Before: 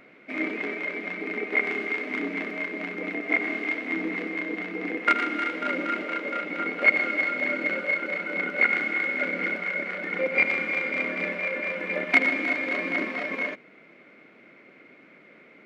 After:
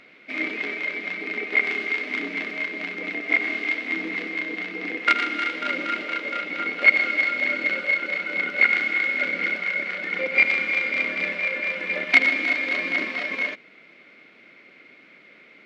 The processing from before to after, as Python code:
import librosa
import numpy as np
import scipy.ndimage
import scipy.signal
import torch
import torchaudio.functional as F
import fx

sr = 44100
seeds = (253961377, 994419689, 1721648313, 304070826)

y = fx.peak_eq(x, sr, hz=4100.0, db=12.5, octaves=2.0)
y = y * 10.0 ** (-3.0 / 20.0)